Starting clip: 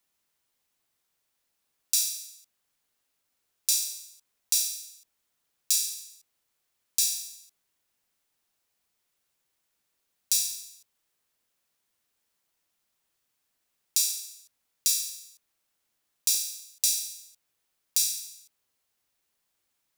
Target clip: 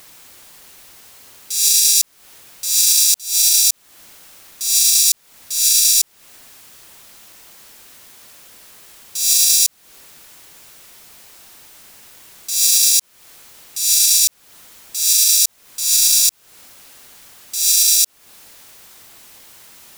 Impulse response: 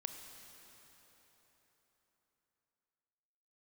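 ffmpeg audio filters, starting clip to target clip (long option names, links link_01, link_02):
-af "areverse,acompressor=threshold=-35dB:ratio=6,alimiter=level_in=35dB:limit=-1dB:release=50:level=0:latency=1,volume=-1dB"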